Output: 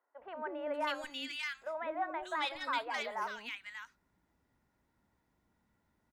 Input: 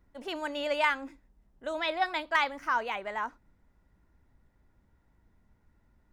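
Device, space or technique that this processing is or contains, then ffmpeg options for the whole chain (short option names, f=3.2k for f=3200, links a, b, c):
soft clipper into limiter: -filter_complex "[0:a]highpass=f=290:p=1,asoftclip=type=tanh:threshold=-19.5dB,alimiter=limit=-24dB:level=0:latency=1,acrossover=split=490|1700[a][b][c];[a]adelay=200[d];[c]adelay=590[e];[d][b][e]amix=inputs=3:normalize=0,volume=-1dB"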